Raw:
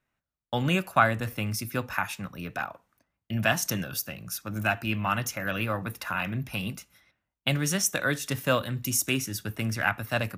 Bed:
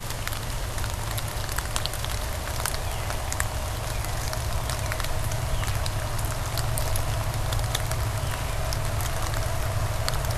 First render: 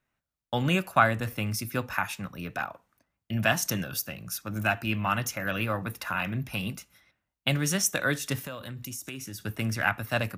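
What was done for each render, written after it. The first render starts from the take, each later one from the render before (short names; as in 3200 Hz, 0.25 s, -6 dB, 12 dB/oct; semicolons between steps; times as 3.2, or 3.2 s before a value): 8.44–9.43 compressor, threshold -35 dBFS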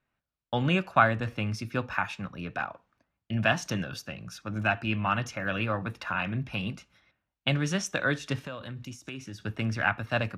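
LPF 4100 Hz 12 dB/oct; notch 2000 Hz, Q 19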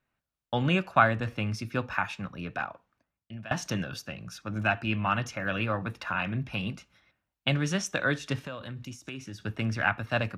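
2.34–3.51 fade out equal-power, to -22 dB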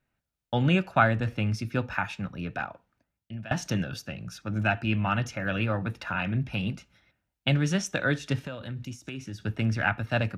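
low shelf 270 Hz +5 dB; notch 1100 Hz, Q 6.9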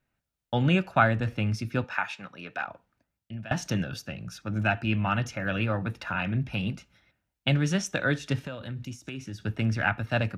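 1.84–2.68 weighting filter A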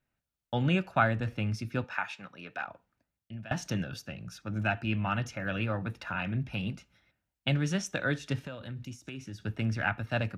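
gain -4 dB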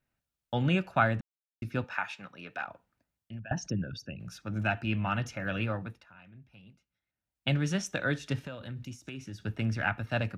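1.21–1.62 mute; 3.39–4.2 formant sharpening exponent 2; 5.68–7.49 dip -21 dB, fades 0.39 s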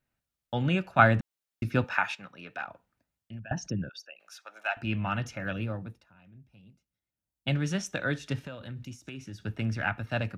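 0.99–2.15 gain +6 dB; 3.89–4.77 HPF 620 Hz 24 dB/oct; 5.53–7.48 bell 1800 Hz -8 dB 2.5 oct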